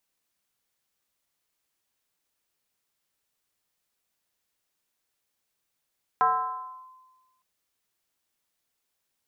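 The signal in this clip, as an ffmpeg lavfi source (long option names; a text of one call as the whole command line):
ffmpeg -f lavfi -i "aevalsrc='0.15*pow(10,-3*t/1.3)*sin(2*PI*1030*t+1.1*clip(1-t/0.7,0,1)*sin(2*PI*0.28*1030*t))':duration=1.21:sample_rate=44100" out.wav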